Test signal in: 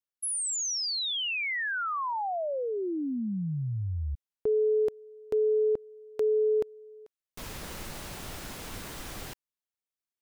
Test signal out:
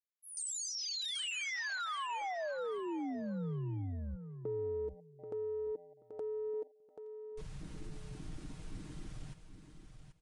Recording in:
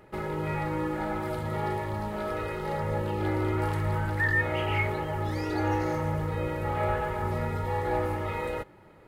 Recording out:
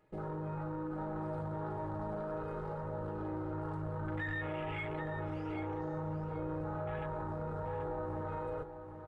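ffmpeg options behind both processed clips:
ffmpeg -i in.wav -filter_complex "[0:a]afwtdn=0.0224,aecho=1:1:6.5:0.51,acompressor=threshold=-37dB:ratio=6:attack=3.6:release=23:knee=6,asplit=2[link_01][link_02];[link_02]aecho=0:1:783|1566|2349:0.355|0.0745|0.0156[link_03];[link_01][link_03]amix=inputs=2:normalize=0,aresample=22050,aresample=44100,volume=-1dB" out.wav

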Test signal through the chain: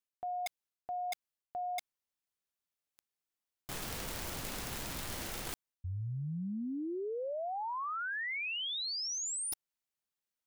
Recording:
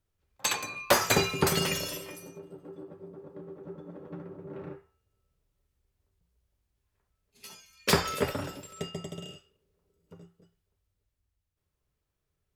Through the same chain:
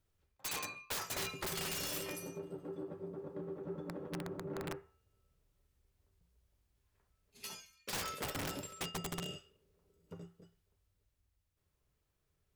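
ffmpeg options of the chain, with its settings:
ffmpeg -i in.wav -af "areverse,acompressor=threshold=-37dB:ratio=12,areverse,aeval=exprs='(mod(47.3*val(0)+1,2)-1)/47.3':channel_layout=same,volume=1dB" out.wav

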